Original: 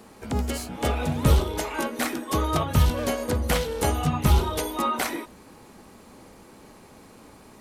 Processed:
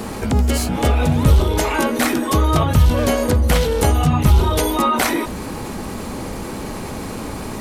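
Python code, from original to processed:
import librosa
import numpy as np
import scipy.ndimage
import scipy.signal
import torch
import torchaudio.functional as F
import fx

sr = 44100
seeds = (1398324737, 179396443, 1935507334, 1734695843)

y = fx.low_shelf(x, sr, hz=160.0, db=7.0)
y = fx.env_flatten(y, sr, amount_pct=50)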